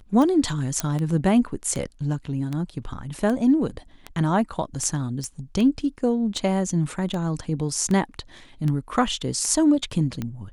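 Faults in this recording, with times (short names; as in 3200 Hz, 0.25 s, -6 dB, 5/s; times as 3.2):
tick 78 rpm
0.8 pop -8 dBFS
5.24 pop -20 dBFS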